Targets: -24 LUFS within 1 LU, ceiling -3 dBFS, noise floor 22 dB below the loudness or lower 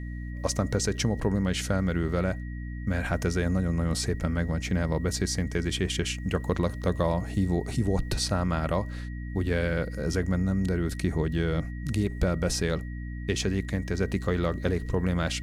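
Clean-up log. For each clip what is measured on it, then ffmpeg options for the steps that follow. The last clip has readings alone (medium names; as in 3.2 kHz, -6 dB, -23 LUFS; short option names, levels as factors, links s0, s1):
hum 60 Hz; highest harmonic 300 Hz; hum level -33 dBFS; steady tone 1.9 kHz; tone level -48 dBFS; loudness -28.5 LUFS; peak level -12.0 dBFS; loudness target -24.0 LUFS
-> -af "bandreject=f=60:t=h:w=6,bandreject=f=120:t=h:w=6,bandreject=f=180:t=h:w=6,bandreject=f=240:t=h:w=6,bandreject=f=300:t=h:w=6"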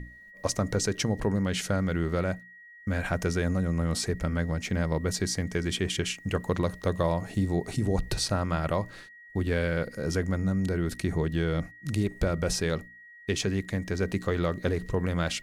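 hum not found; steady tone 1.9 kHz; tone level -48 dBFS
-> -af "bandreject=f=1900:w=30"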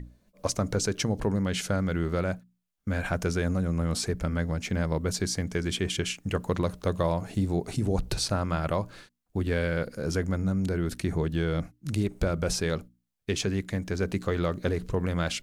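steady tone not found; loudness -29.5 LUFS; peak level -11.5 dBFS; loudness target -24.0 LUFS
-> -af "volume=1.88"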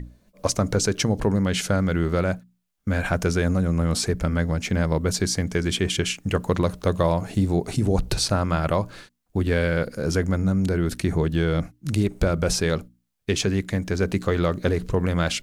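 loudness -24.0 LUFS; peak level -6.0 dBFS; noise floor -68 dBFS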